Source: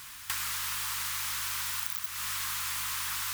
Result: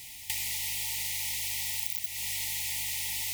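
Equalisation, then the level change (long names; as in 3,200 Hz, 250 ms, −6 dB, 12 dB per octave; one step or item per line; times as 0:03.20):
Chebyshev band-stop filter 900–1,900 Hz, order 5
+1.5 dB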